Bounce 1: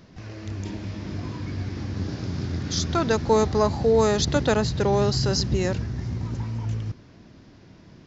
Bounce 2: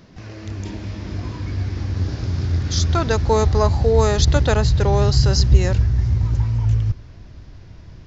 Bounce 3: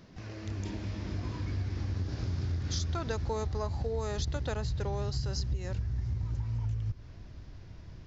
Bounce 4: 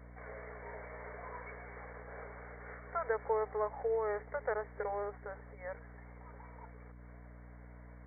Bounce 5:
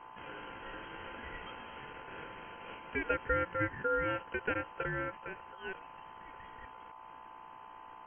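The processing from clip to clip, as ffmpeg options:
-af "asubboost=boost=10:cutoff=70,volume=3dB"
-af "acompressor=threshold=-22dB:ratio=10,volume=-7dB"
-af "afftfilt=real='re*between(b*sr/4096,400,2300)':imag='im*between(b*sr/4096,400,2300)':win_size=4096:overlap=0.75,aeval=exprs='val(0)+0.002*(sin(2*PI*60*n/s)+sin(2*PI*2*60*n/s)/2+sin(2*PI*3*60*n/s)/3+sin(2*PI*4*60*n/s)/4+sin(2*PI*5*60*n/s)/5)':c=same,volume=2.5dB"
-af "aeval=exprs='val(0)*sin(2*PI*950*n/s)':c=same,volume=4dB"

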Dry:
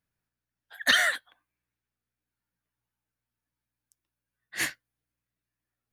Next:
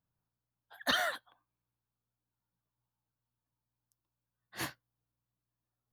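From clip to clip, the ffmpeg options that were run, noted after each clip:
-af "equalizer=f=125:t=o:w=1:g=6,equalizer=f=1k:t=o:w=1:g=7,equalizer=f=2k:t=o:w=1:g=-12,equalizer=f=8k:t=o:w=1:g=-11,volume=-3dB"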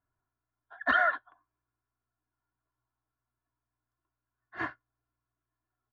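-af "lowpass=f=1.5k:t=q:w=2.3,aecho=1:1:2.9:0.73"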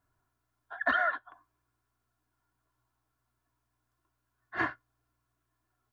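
-af "acompressor=threshold=-34dB:ratio=4,volume=7.5dB"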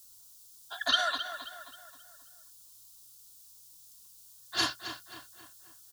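-filter_complex "[0:a]alimiter=limit=-21.5dB:level=0:latency=1:release=53,aexciter=amount=15.3:drive=9.5:freq=3.3k,asplit=2[a][b];[b]adelay=266,lowpass=f=4k:p=1,volume=-9.5dB,asplit=2[c][d];[d]adelay=266,lowpass=f=4k:p=1,volume=0.47,asplit=2[e][f];[f]adelay=266,lowpass=f=4k:p=1,volume=0.47,asplit=2[g][h];[h]adelay=266,lowpass=f=4k:p=1,volume=0.47,asplit=2[i][j];[j]adelay=266,lowpass=f=4k:p=1,volume=0.47[k];[a][c][e][g][i][k]amix=inputs=6:normalize=0"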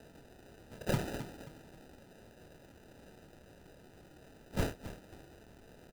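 -filter_complex "[0:a]bandpass=f=7.7k:t=q:w=1.2:csg=0,acrusher=samples=40:mix=1:aa=0.000001,asplit=2[a][b];[b]adelay=27,volume=-9dB[c];[a][c]amix=inputs=2:normalize=0,volume=3.5dB"

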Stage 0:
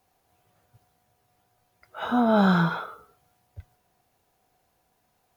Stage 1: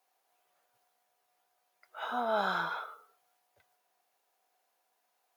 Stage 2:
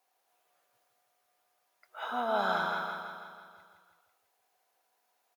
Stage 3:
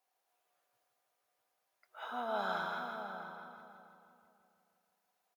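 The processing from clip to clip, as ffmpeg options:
-af "highpass=590,volume=-5.5dB"
-af "aecho=1:1:164|328|492|656|820|984|1148|1312:0.562|0.326|0.189|0.11|0.0636|0.0369|0.0214|0.0124"
-filter_complex "[0:a]asplit=2[a][b];[b]adelay=652,lowpass=f=940:p=1,volume=-6.5dB,asplit=2[c][d];[d]adelay=652,lowpass=f=940:p=1,volume=0.24,asplit=2[e][f];[f]adelay=652,lowpass=f=940:p=1,volume=0.24[g];[a][c][e][g]amix=inputs=4:normalize=0,volume=-6.5dB"

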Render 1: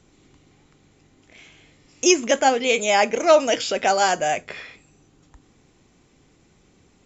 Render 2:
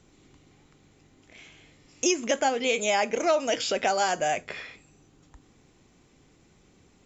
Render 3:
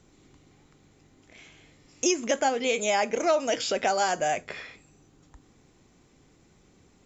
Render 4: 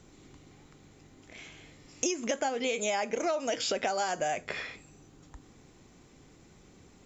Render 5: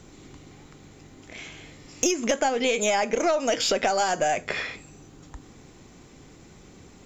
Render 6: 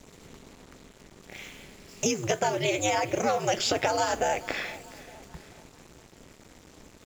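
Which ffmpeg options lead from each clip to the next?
-af "acompressor=threshold=-20dB:ratio=3,volume=-2dB"
-af "equalizer=f=2.8k:t=o:w=0.75:g=-2.5"
-af "acompressor=threshold=-31dB:ratio=5,volume=3dB"
-af "aeval=exprs='(tanh(7.08*val(0)+0.25)-tanh(0.25))/7.08':c=same,volume=8dB"
-af "aeval=exprs='val(0)*sin(2*PI*110*n/s)':c=same,aecho=1:1:431|862|1293|1724:0.112|0.0583|0.0303|0.0158,acrusher=bits=7:mix=0:aa=0.5"

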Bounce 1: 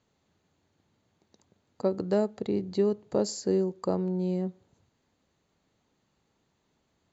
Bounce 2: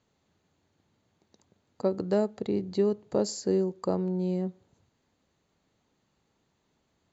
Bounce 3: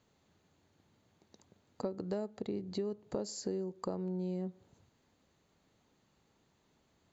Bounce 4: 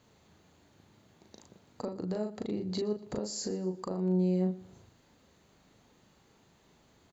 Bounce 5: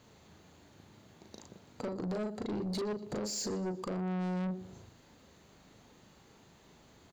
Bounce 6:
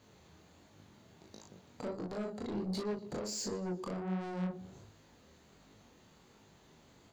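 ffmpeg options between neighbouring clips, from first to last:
-af anull
-af "acompressor=threshold=-37dB:ratio=4,volume=1dB"
-filter_complex "[0:a]alimiter=level_in=8.5dB:limit=-24dB:level=0:latency=1:release=344,volume=-8.5dB,asplit=2[a][b];[b]adelay=38,volume=-3.5dB[c];[a][c]amix=inputs=2:normalize=0,aecho=1:1:119|238|357:0.1|0.037|0.0137,volume=7dB"
-af "asoftclip=type=tanh:threshold=-36dB,volume=4dB"
-af "flanger=delay=19:depth=6.8:speed=1.4,volume=1dB"

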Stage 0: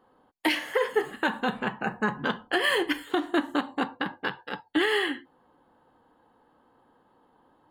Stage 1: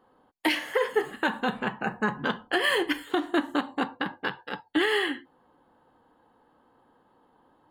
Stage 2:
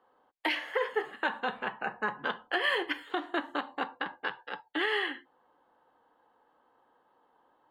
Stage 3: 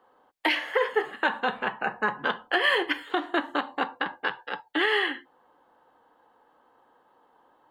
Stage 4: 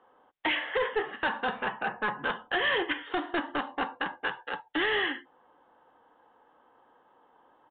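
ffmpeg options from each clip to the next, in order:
-af anull
-filter_complex "[0:a]acrossover=split=400 4300:gain=0.224 1 0.2[a][b][c];[a][b][c]amix=inputs=3:normalize=0,volume=-3dB"
-af "acontrast=44"
-af "aresample=11025,asoftclip=type=tanh:threshold=-22dB,aresample=44100,aresample=8000,aresample=44100"

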